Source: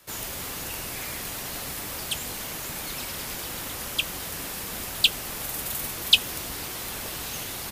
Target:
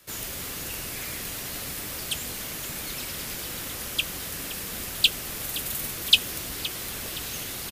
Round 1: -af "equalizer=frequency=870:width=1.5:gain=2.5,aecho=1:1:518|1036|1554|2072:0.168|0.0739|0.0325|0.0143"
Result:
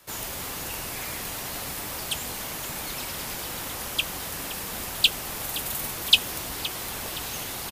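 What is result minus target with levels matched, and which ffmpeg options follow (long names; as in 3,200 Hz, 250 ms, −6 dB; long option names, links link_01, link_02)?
1,000 Hz band +5.5 dB
-af "equalizer=frequency=870:width=1.5:gain=-5.5,aecho=1:1:518|1036|1554|2072:0.168|0.0739|0.0325|0.0143"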